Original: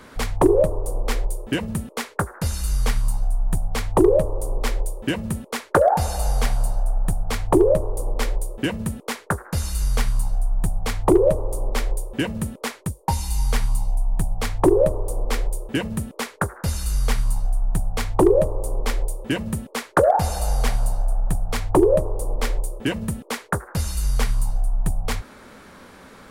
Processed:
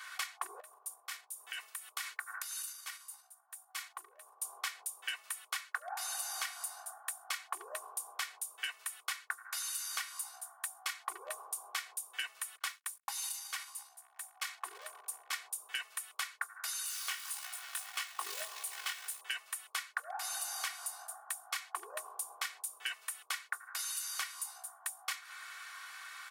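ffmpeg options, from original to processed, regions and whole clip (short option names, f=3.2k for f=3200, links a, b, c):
-filter_complex "[0:a]asettb=1/sr,asplit=3[a][b][c];[a]atrim=end=0.604[d];[b]atrim=start=0.6:end=4.42,asetpts=PTS-STARTPTS,afade=t=in:d=0.004:c=qsin,afade=t=out:st=3.816:d=0.004:c=qsin,highshelf=f=9.9k:g=6,acompressor=threshold=-31dB:ratio=16:attack=3.2:release=140:knee=1:detection=peak[e];[c]atrim=start=4.416[f];[d][e]acrossfade=d=0.004:c1=hsin:c2=qsin[g];[g][f]acrossfade=d=0.004:c1=qsin:c2=hsin,asettb=1/sr,asplit=3[h][i][j];[h]atrim=end=12.574[k];[i]atrim=start=12.57:end=15.33,asetpts=PTS-STARTPTS,afade=t=in:d=0.004:c=qsin,afade=t=out:st=2.756:d=0.004:c=qsin,lowshelf=f=61:g=8,acompressor=threshold=-20dB:ratio=6:attack=3.2:release=140:knee=1:detection=peak,aeval=exprs='sgn(val(0))*max(abs(val(0))-0.00501,0)':c=same[l];[j]atrim=start=15.326[m];[k][l]acrossfade=d=0.004:c1=hsin:c2=qsin[n];[n][m]acrossfade=d=0.004:c1=qsin:c2=hsin,asettb=1/sr,asplit=3[o][p][q];[o]atrim=end=16.864[r];[p]atrim=start=16.86:end=19.21,asetpts=PTS-STARTPTS,afade=t=in:d=0.004:c=qsin,afade=t=out:st=2.346:d=0.004:c=qsin,equalizer=f=2.9k:t=o:w=0.35:g=5,acrusher=bits=5:mode=log:mix=0:aa=0.000001,flanger=delay=16:depth=6:speed=1.7[s];[q]atrim=start=19.206[t];[r][s]acrossfade=d=0.004:c1=hsin:c2=qsin[u];[u][t]acrossfade=d=0.004:c1=qsin:c2=hsin,highpass=f=1.2k:w=0.5412,highpass=f=1.2k:w=1.3066,aecho=1:1:2.7:0.77,acompressor=threshold=-35dB:ratio=12"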